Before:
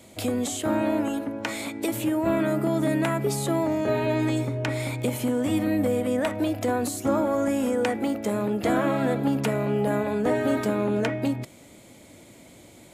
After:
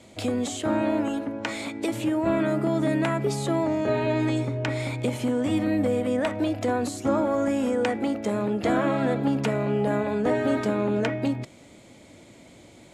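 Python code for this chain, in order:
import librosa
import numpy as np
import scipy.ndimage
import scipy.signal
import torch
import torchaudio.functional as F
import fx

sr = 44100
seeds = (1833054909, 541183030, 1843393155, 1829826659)

y = scipy.signal.sosfilt(scipy.signal.butter(2, 7100.0, 'lowpass', fs=sr, output='sos'), x)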